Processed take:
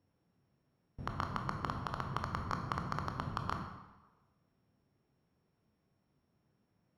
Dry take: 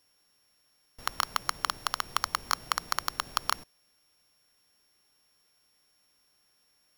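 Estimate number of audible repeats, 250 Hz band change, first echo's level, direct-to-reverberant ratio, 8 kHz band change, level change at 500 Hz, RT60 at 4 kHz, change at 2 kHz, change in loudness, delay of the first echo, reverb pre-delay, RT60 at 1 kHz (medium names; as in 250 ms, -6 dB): no echo, +9.0 dB, no echo, 4.0 dB, -24.0 dB, +0.5 dB, 0.90 s, -10.0 dB, -8.0 dB, no echo, 16 ms, 1.2 s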